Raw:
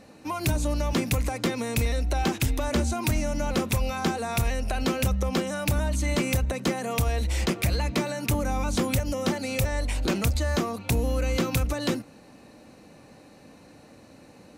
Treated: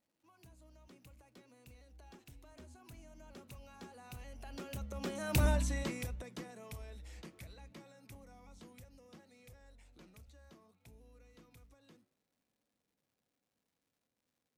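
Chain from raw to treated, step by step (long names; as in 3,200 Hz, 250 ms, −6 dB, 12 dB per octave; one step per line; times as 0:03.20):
source passing by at 0:05.46, 20 m/s, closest 2.5 metres
flanger 0.64 Hz, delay 5.2 ms, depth 8 ms, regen −89%
surface crackle 290 per second −73 dBFS
level +1.5 dB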